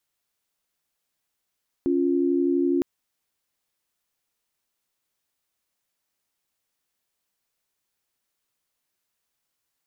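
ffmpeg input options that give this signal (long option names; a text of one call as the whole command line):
ffmpeg -f lavfi -i "aevalsrc='0.0794*(sin(2*PI*277.18*t)+sin(2*PI*349.23*t))':duration=0.96:sample_rate=44100" out.wav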